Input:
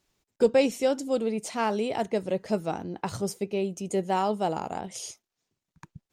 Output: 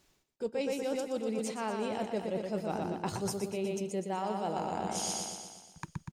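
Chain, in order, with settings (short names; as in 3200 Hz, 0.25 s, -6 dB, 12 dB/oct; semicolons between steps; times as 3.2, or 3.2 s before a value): feedback echo 0.121 s, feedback 57%, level -5.5 dB; reverse; compressor 10:1, threshold -37 dBFS, peak gain reduction 22.5 dB; reverse; gain +6 dB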